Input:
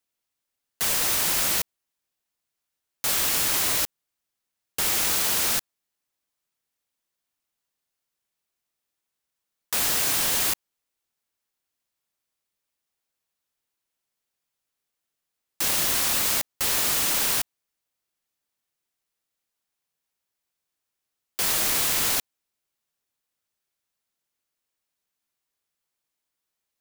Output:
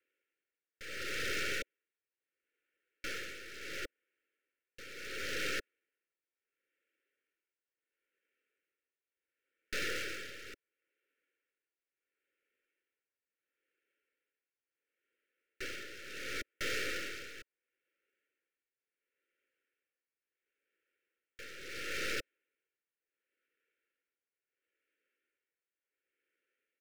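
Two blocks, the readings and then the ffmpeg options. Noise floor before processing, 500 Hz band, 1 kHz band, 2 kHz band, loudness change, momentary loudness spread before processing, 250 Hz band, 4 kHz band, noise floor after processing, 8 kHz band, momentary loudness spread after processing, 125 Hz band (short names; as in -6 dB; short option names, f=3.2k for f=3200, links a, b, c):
-84 dBFS, -7.5 dB, -16.0 dB, -8.0 dB, -18.0 dB, 6 LU, -11.0 dB, -15.5 dB, under -85 dBFS, -24.5 dB, 14 LU, -14.0 dB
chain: -filter_complex "[0:a]highpass=f=230:t=q:w=0.5412,highpass=f=230:t=q:w=1.307,lowpass=f=2.6k:t=q:w=0.5176,lowpass=f=2.6k:t=q:w=0.7071,lowpass=f=2.6k:t=q:w=1.932,afreqshift=51,aresample=16000,aeval=exprs='0.0299*(abs(mod(val(0)/0.0299+3,4)-2)-1)':c=same,aresample=44100,acrusher=bits=3:mode=log:mix=0:aa=0.000001,aeval=exprs='(tanh(112*val(0)+0.65)-tanh(0.65))/112':c=same,asuperstop=centerf=880:order=12:qfactor=1.1,asplit=2[a][b];[b]alimiter=level_in=19dB:limit=-24dB:level=0:latency=1:release=16,volume=-19dB,volume=0.5dB[c];[a][c]amix=inputs=2:normalize=0,aecho=1:1:2.2:0.31,tremolo=f=0.72:d=0.8,volume=4.5dB"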